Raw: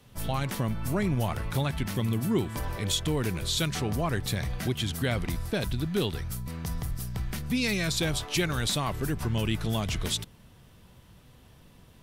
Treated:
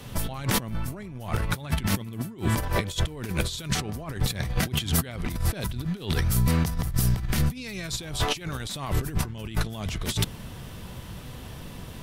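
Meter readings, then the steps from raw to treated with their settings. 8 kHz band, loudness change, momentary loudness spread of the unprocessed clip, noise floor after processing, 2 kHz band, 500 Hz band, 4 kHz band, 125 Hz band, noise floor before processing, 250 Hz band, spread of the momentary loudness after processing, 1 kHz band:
+2.5 dB, +1.5 dB, 7 LU, -41 dBFS, +0.5 dB, -2.5 dB, 0.0 dB, +2.5 dB, -55 dBFS, -0.5 dB, 15 LU, +1.5 dB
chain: negative-ratio compressor -35 dBFS, ratio -0.5; gain +8.5 dB

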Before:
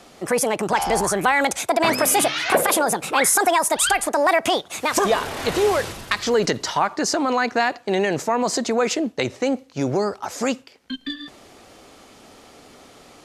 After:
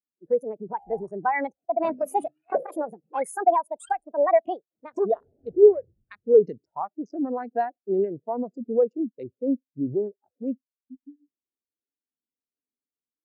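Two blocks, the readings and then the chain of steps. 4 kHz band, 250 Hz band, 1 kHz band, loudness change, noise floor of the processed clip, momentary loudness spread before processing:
under -35 dB, -5.5 dB, -6.5 dB, -5.0 dB, under -85 dBFS, 8 LU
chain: Wiener smoothing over 41 samples; spectral expander 2.5:1

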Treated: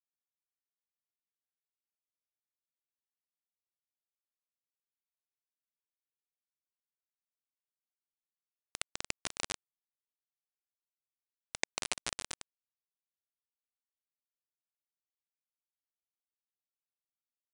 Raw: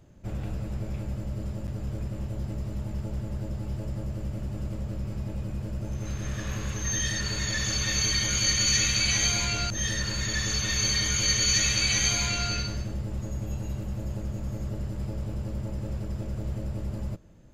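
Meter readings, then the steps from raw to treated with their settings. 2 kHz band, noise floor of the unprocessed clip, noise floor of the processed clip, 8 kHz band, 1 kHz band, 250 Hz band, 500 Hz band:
-17.5 dB, -36 dBFS, under -85 dBFS, -21.0 dB, -12.5 dB, -27.0 dB, -17.0 dB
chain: AGC gain up to 14 dB; vowel filter a; bit-crush 4-bit; downsampling 22050 Hz; record warp 45 rpm, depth 250 cents; gain +4 dB

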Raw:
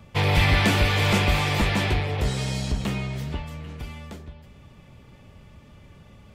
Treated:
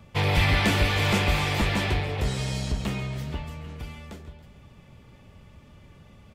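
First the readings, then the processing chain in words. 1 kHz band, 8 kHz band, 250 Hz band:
-2.0 dB, -2.0 dB, -2.0 dB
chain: feedback echo 0.139 s, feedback 49%, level -15 dB; gain -2 dB

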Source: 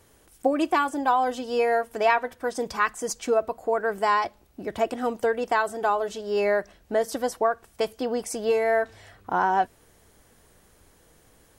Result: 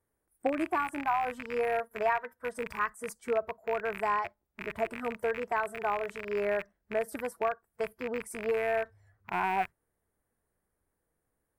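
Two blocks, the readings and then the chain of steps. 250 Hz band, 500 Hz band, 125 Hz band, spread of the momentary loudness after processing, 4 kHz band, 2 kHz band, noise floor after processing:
-8.0 dB, -7.5 dB, n/a, 7 LU, -12.0 dB, -5.5 dB, -82 dBFS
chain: rattling part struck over -42 dBFS, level -13 dBFS; spectral noise reduction 16 dB; band shelf 4300 Hz -13.5 dB; gain -7 dB

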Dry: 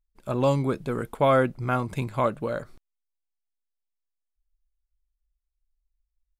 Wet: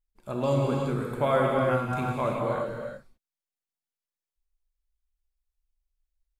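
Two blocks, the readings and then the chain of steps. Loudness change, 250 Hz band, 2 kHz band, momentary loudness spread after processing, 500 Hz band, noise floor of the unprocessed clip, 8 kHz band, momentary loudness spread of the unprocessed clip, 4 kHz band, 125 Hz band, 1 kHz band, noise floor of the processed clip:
-1.5 dB, -1.5 dB, -1.5 dB, 11 LU, -1.0 dB, -82 dBFS, n/a, 11 LU, -1.5 dB, -1.0 dB, -1.5 dB, under -85 dBFS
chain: non-linear reverb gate 0.41 s flat, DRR -2 dB; gain -5.5 dB

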